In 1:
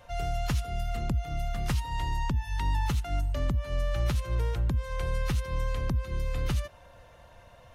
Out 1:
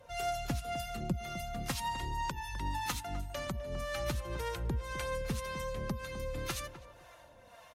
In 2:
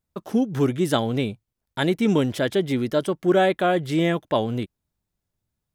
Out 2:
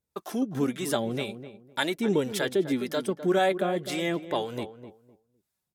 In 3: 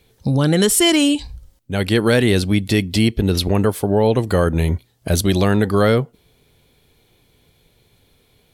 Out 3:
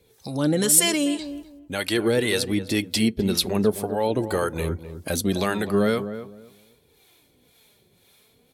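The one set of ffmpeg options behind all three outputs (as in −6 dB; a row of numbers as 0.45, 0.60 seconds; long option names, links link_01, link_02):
-filter_complex "[0:a]highpass=frequency=180:poles=1,equalizer=frequency=12000:width=0.36:gain=5,bandreject=frequency=3000:width=25,asplit=2[link_01][link_02];[link_02]acompressor=threshold=-27dB:ratio=6,volume=-0.5dB[link_03];[link_01][link_03]amix=inputs=2:normalize=0,acrossover=split=590[link_04][link_05];[link_04]aeval=exprs='val(0)*(1-0.7/2+0.7/2*cos(2*PI*1.9*n/s))':channel_layout=same[link_06];[link_05]aeval=exprs='val(0)*(1-0.7/2-0.7/2*cos(2*PI*1.9*n/s))':channel_layout=same[link_07];[link_06][link_07]amix=inputs=2:normalize=0,flanger=delay=1.9:depth=3.7:regen=48:speed=0.44:shape=triangular,asplit=2[link_08][link_09];[link_09]adelay=254,lowpass=frequency=1100:poles=1,volume=-10.5dB,asplit=2[link_10][link_11];[link_11]adelay=254,lowpass=frequency=1100:poles=1,volume=0.24,asplit=2[link_12][link_13];[link_13]adelay=254,lowpass=frequency=1100:poles=1,volume=0.24[link_14];[link_10][link_12][link_14]amix=inputs=3:normalize=0[link_15];[link_08][link_15]amix=inputs=2:normalize=0" -ar 48000 -c:a libopus -b:a 256k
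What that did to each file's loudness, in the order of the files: −6.5, −5.5, −5.5 LU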